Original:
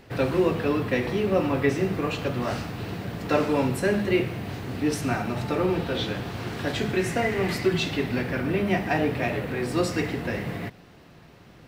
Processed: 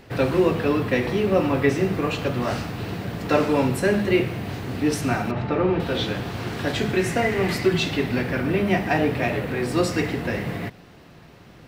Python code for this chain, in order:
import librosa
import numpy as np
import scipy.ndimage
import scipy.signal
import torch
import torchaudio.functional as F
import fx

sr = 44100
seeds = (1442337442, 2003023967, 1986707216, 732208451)

y = fx.lowpass(x, sr, hz=2700.0, slope=12, at=(5.31, 5.8))
y = y * librosa.db_to_amplitude(3.0)